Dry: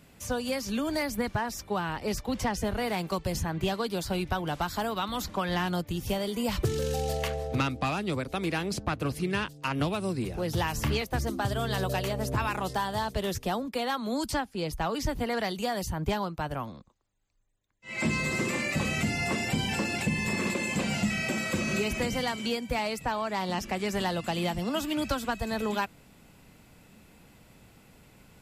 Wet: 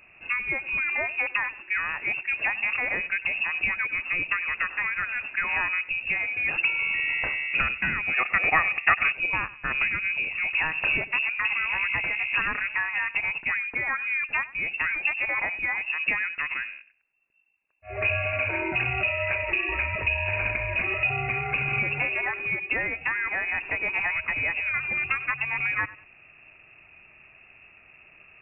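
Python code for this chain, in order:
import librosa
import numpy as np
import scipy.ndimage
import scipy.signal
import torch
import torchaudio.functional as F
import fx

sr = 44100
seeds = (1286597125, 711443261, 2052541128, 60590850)

y = fx.echo_feedback(x, sr, ms=97, feedback_pct=27, wet_db=-18.5)
y = fx.freq_invert(y, sr, carrier_hz=2700)
y = fx.small_body(y, sr, hz=(750.0, 1200.0, 1800.0), ring_ms=20, db=15, at=(8.13, 9.11), fade=0.02)
y = F.gain(torch.from_numpy(y), 2.5).numpy()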